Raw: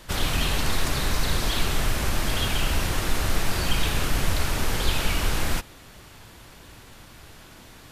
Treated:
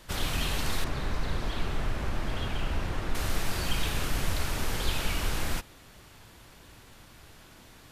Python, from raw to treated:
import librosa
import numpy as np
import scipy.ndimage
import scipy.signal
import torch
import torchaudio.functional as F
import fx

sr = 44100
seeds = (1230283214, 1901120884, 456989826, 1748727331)

y = fx.lowpass(x, sr, hz=1700.0, slope=6, at=(0.84, 3.15))
y = y * librosa.db_to_amplitude(-5.5)